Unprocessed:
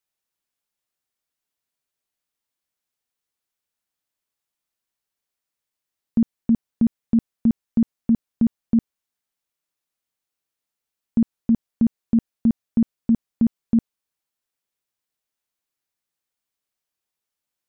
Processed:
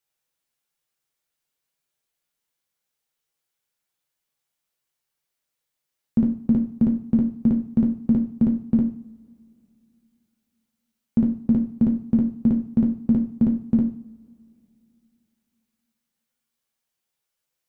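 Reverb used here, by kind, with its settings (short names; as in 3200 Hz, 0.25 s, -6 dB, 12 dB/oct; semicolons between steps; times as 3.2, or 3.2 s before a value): two-slope reverb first 0.43 s, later 2.9 s, from -27 dB, DRR 0 dB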